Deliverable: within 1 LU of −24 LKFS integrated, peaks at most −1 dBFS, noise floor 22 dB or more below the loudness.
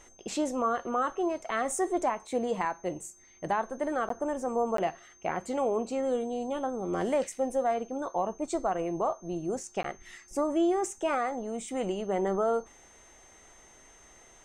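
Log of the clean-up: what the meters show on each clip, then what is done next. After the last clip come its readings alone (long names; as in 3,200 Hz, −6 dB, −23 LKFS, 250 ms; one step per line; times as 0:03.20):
number of dropouts 3; longest dropout 13 ms; interfering tone 6,300 Hz; level of the tone −57 dBFS; integrated loudness −31.0 LKFS; sample peak −18.0 dBFS; target loudness −24.0 LKFS
→ repair the gap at 0:04.09/0:04.77/0:09.83, 13 ms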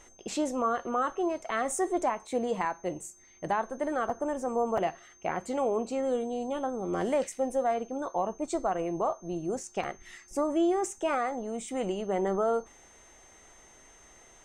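number of dropouts 0; interfering tone 6,300 Hz; level of the tone −57 dBFS
→ notch filter 6,300 Hz, Q 30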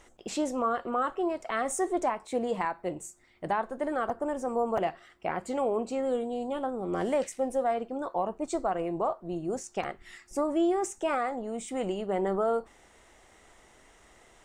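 interfering tone none found; integrated loudness −31.0 LKFS; sample peak −17.5 dBFS; target loudness −24.0 LKFS
→ level +7 dB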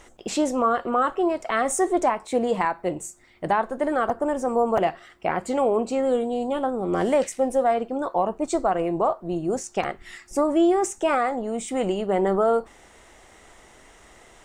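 integrated loudness −24.0 LKFS; sample peak −10.5 dBFS; background noise floor −52 dBFS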